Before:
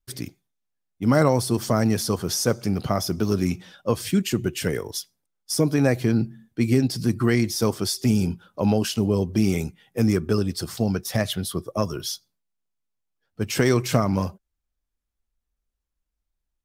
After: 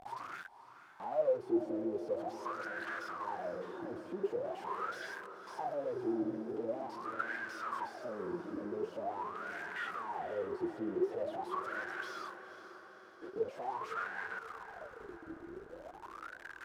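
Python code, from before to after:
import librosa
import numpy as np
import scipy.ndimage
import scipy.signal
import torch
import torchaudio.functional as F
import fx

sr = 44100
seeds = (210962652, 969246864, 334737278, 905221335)

y = np.sign(x) * np.sqrt(np.mean(np.square(x)))
y = fx.wah_lfo(y, sr, hz=0.44, low_hz=320.0, high_hz=1600.0, q=15.0)
y = fx.echo_diffused(y, sr, ms=499, feedback_pct=57, wet_db=-12.0)
y = F.gain(torch.from_numpy(y), 3.5).numpy()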